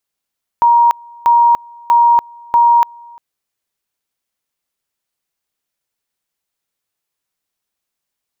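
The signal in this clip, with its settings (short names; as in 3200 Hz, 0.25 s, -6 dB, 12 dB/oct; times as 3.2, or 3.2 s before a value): two-level tone 944 Hz -6 dBFS, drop 28 dB, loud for 0.29 s, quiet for 0.35 s, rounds 4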